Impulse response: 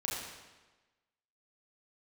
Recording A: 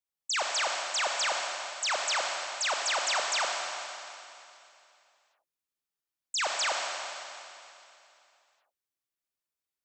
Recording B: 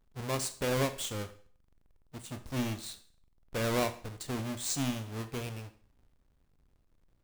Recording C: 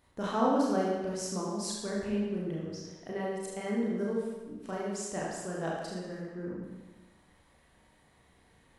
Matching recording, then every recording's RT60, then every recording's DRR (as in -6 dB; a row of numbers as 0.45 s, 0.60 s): C; 2.8 s, 0.50 s, 1.2 s; 0.0 dB, 9.5 dB, -5.0 dB